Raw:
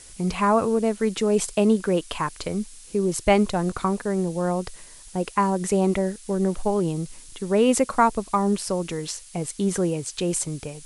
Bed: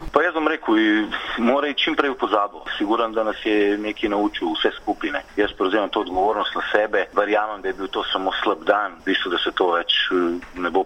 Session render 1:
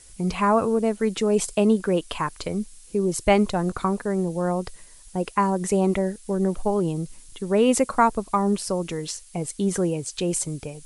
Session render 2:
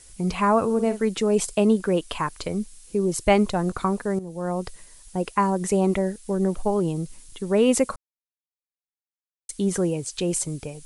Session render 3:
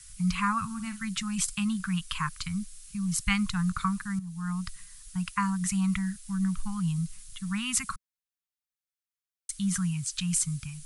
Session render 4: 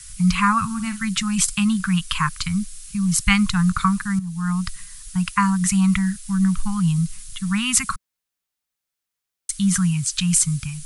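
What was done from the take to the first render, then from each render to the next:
noise reduction 6 dB, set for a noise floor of -46 dBFS
0.65–1.05 s: doubling 48 ms -11 dB; 4.19–4.66 s: fade in, from -14 dB; 7.96–9.49 s: mute
elliptic band-stop 180–1200 Hz, stop band 60 dB
trim +9.5 dB

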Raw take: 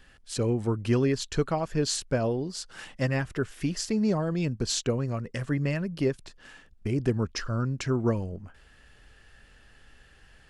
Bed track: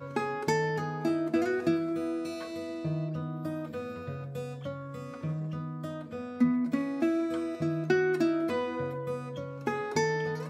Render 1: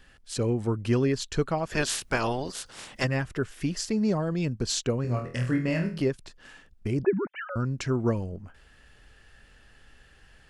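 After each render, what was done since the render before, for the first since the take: 1.67–3.03 s: spectral peaks clipped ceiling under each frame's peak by 21 dB; 5.02–6.02 s: flutter echo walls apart 4.2 m, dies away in 0.37 s; 7.03–7.56 s: formants replaced by sine waves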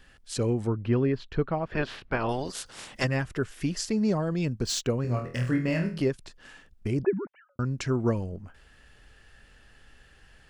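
0.67–2.29 s: distance through air 360 m; 4.61–5.76 s: median filter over 3 samples; 6.93–7.59 s: studio fade out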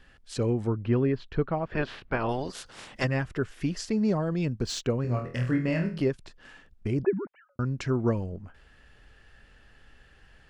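treble shelf 6.2 kHz -10.5 dB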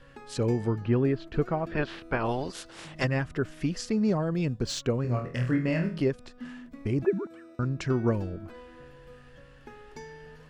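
add bed track -16.5 dB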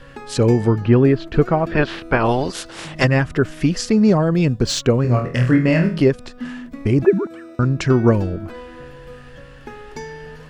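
trim +11.5 dB

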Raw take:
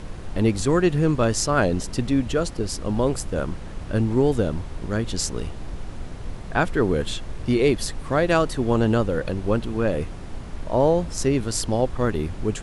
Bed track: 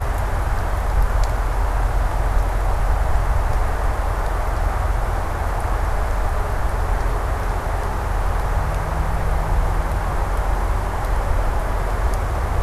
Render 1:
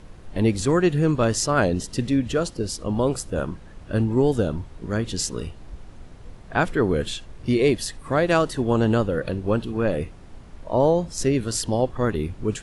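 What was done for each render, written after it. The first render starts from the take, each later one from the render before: noise print and reduce 9 dB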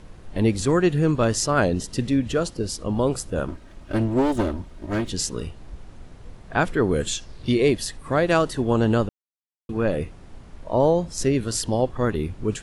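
3.48–5.09 s: comb filter that takes the minimum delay 3.2 ms; 6.91–7.51 s: peaking EQ 9.8 kHz -> 3.4 kHz +12.5 dB 0.49 oct; 9.09–9.69 s: mute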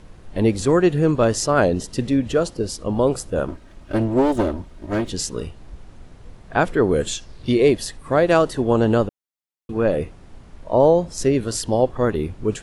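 dynamic bell 550 Hz, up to +5 dB, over -34 dBFS, Q 0.75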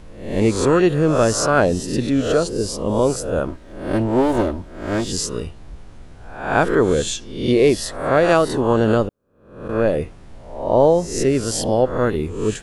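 reverse spectral sustain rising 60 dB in 0.62 s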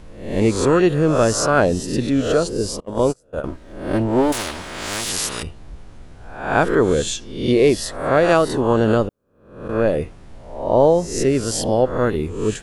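2.80–3.44 s: gate -19 dBFS, range -31 dB; 4.32–5.43 s: spectrum-flattening compressor 4:1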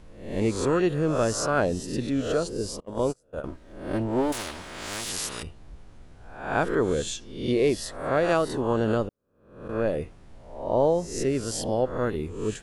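trim -8 dB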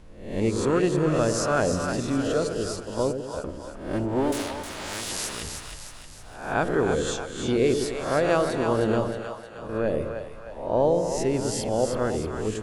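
two-band feedback delay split 600 Hz, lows 101 ms, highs 312 ms, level -6 dB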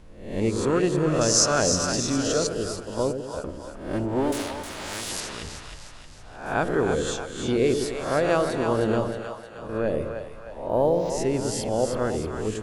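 1.21–2.47 s: peaking EQ 5.9 kHz +14.5 dB 1 oct; 5.20–6.46 s: distance through air 64 m; 10.68–11.10 s: decimation joined by straight lines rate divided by 4×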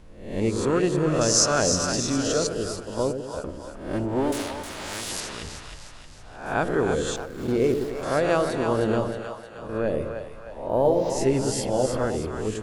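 7.16–8.03 s: median filter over 15 samples; 10.83–12.05 s: doubling 15 ms -4 dB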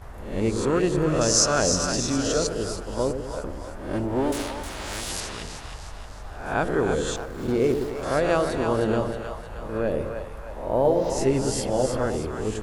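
add bed track -19.5 dB

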